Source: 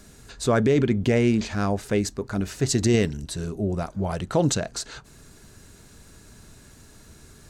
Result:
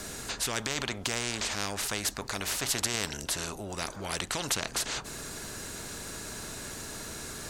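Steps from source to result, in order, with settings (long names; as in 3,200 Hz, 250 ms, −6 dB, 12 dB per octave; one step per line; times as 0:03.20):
every bin compressed towards the loudest bin 4 to 1
level +1 dB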